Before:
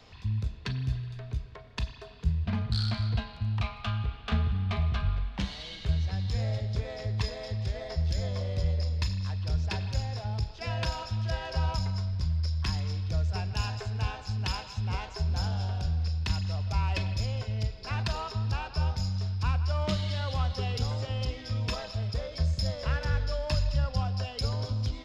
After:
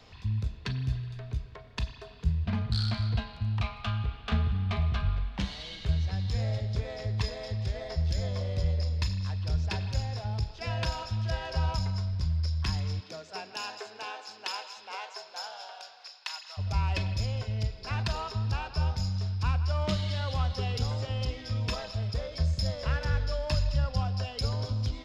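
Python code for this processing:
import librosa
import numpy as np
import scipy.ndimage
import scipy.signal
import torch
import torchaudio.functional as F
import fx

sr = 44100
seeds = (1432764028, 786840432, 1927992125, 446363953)

y = fx.highpass(x, sr, hz=fx.line((12.99, 230.0), (16.57, 850.0)), slope=24, at=(12.99, 16.57), fade=0.02)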